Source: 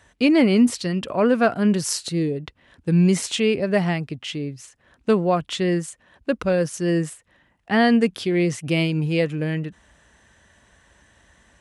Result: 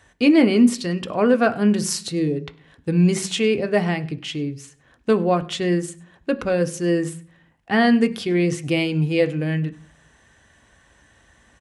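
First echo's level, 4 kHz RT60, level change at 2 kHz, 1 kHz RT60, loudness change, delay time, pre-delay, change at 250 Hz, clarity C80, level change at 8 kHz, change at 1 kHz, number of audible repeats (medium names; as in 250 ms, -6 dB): -24.5 dB, 0.50 s, +1.0 dB, 0.40 s, +0.5 dB, 100 ms, 3 ms, +1.0 dB, 21.0 dB, 0.0 dB, +0.5 dB, 1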